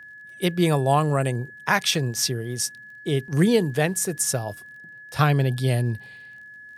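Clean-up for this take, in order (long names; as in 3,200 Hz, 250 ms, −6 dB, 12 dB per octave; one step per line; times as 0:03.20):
click removal
notch filter 1,700 Hz, Q 30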